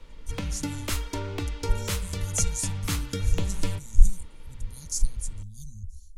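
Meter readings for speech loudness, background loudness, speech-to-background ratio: −33.0 LKFS, −32.5 LKFS, −0.5 dB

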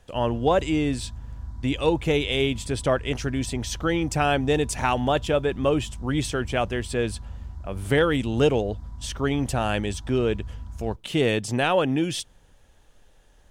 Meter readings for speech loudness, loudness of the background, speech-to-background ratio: −25.0 LKFS, −39.5 LKFS, 14.5 dB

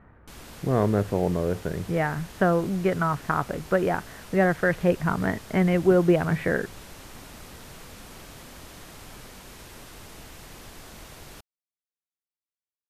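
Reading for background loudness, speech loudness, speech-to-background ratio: −44.5 LKFS, −24.5 LKFS, 20.0 dB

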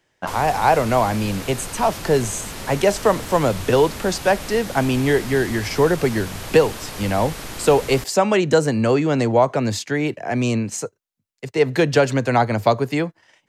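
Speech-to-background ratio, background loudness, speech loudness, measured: 12.5 dB, −32.5 LKFS, −20.0 LKFS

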